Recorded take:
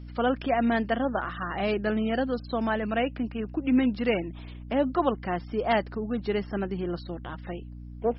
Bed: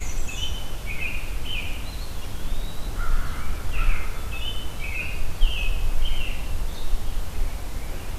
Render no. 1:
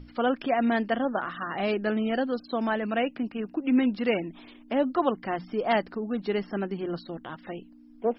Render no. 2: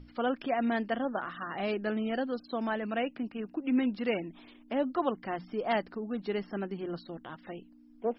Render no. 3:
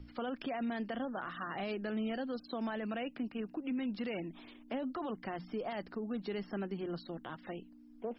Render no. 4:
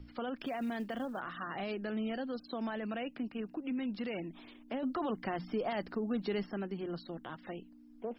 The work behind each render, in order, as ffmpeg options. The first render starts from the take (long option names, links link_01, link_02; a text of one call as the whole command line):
ffmpeg -i in.wav -af "bandreject=frequency=60:width_type=h:width=6,bandreject=frequency=120:width_type=h:width=6,bandreject=frequency=180:width_type=h:width=6" out.wav
ffmpeg -i in.wav -af "volume=-5dB" out.wav
ffmpeg -i in.wav -filter_complex "[0:a]alimiter=level_in=3dB:limit=-24dB:level=0:latency=1:release=12,volume=-3dB,acrossover=split=170|3000[link_01][link_02][link_03];[link_02]acompressor=threshold=-39dB:ratio=2[link_04];[link_01][link_04][link_03]amix=inputs=3:normalize=0" out.wav
ffmpeg -i in.wav -filter_complex "[0:a]asettb=1/sr,asplit=3[link_01][link_02][link_03];[link_01]atrim=end=0.384[link_04];[link_02]atrim=start=0.38:end=1.2,asetpts=PTS-STARTPTS,afade=type=in:duration=0.004:curve=qsin,afade=type=out:start_time=0.816:duration=0.004:curve=qsin,acrusher=bits=8:mode=log:mix=0:aa=0.000001[link_05];[link_03]atrim=start=1.196[link_06];[link_04][link_05]acrossfade=duration=0.004:curve1=hsin:curve2=qsin[link_07];[link_07][link_06]acrossfade=duration=0.004:curve1=qsin:curve2=hsin,asplit=3[link_08][link_09][link_10];[link_08]atrim=end=4.832[link_11];[link_09]atrim=start=4.828:end=6.462,asetpts=PTS-STARTPTS,volume=4dB[link_12];[link_10]atrim=start=6.458[link_13];[link_11][link_12]acrossfade=duration=0.004:curve1=hsin:curve2=hsin[link_14];[link_14][link_13]acrossfade=duration=0.004:curve1=hsin:curve2=hsin" out.wav